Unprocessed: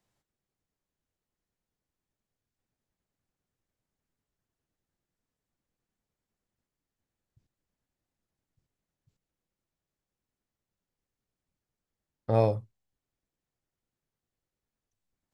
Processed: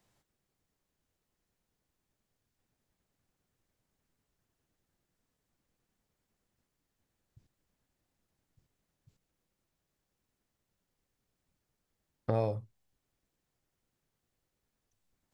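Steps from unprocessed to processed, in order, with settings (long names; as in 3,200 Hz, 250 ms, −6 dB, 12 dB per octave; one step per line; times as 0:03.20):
downward compressor 3 to 1, threshold −36 dBFS, peak gain reduction 13.5 dB
level +5.5 dB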